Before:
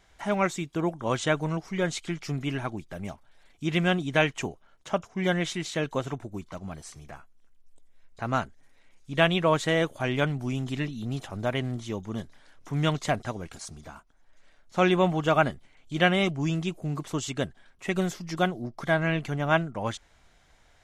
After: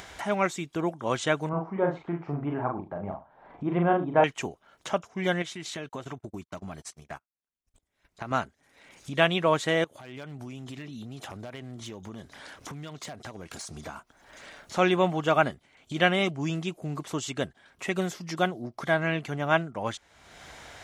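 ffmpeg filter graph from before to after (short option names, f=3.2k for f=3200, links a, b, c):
-filter_complex "[0:a]asettb=1/sr,asplit=3[a][b][c];[a]atrim=end=1.494[d];[b]atrim=start=1.49:end=4.24,asetpts=PTS-STARTPTS,afade=t=in:d=0.004:c=qsin,afade=t=out:st=2.746:d=0.004:c=qsin,lowpass=f=940:t=q:w=2.1,asplit=2[e][f];[f]adelay=41,volume=-3.5dB[g];[e][g]amix=inputs=2:normalize=0,atrim=end_sample=121275,aecho=1:1:72:0.15,atrim=end_sample=121275[h];[c]atrim=start=4.236[i];[d][h]acrossfade=d=0.004:c1=hsin:c2=qsin[j];[j][i]acrossfade=d=0.004:c1=qsin:c2=hsin,asettb=1/sr,asplit=3[k][l][m];[k]atrim=end=5.424[n];[l]atrim=start=5.42:end=8.31,asetpts=PTS-STARTPTS,afade=t=in:d=0.004:c=qsin,afade=t=out:st=2.886:d=0.004:c=qsin,bandreject=f=500:w=7.9,acompressor=threshold=-37dB:ratio=2.5:attack=3.2:release=140:knee=1:detection=peak,agate=range=-40dB:threshold=-44dB:ratio=16:release=100:detection=peak[o];[m]atrim=start=8.306[p];[n][o]acrossfade=d=0.004:c1=hsin:c2=qsin[q];[q][p]acrossfade=d=0.004:c1=qsin:c2=hsin,asettb=1/sr,asplit=3[r][s][t];[r]atrim=end=9.844[u];[s]atrim=start=9.84:end=13.77,asetpts=PTS-STARTPTS,afade=t=in:d=0.004:c=qsin,afade=t=out:st=3.926:d=0.004:c=qsin,acompressor=threshold=-42dB:ratio=8:attack=3.2:release=140:knee=1:detection=peak,aeval=exprs='0.0126*(abs(mod(val(0)/0.0126+3,4)-2)-1)':c=same[v];[t]atrim=start=13.766[w];[u][v]acrossfade=d=0.004:c1=hsin:c2=qsin[x];[x][w]acrossfade=d=0.004:c1=qsin:c2=hsin,highpass=68,bass=f=250:g=-4,treble=f=4k:g=-1,acompressor=mode=upward:threshold=-31dB:ratio=2.5"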